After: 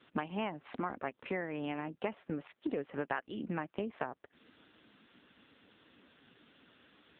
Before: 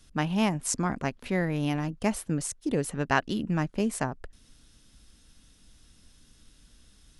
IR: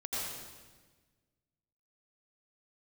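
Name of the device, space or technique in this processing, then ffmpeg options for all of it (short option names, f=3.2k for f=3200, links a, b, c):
voicemail: -af "highpass=340,lowpass=2.7k,acompressor=threshold=-45dB:ratio=6,volume=11dB" -ar 8000 -c:a libopencore_amrnb -b:a 5900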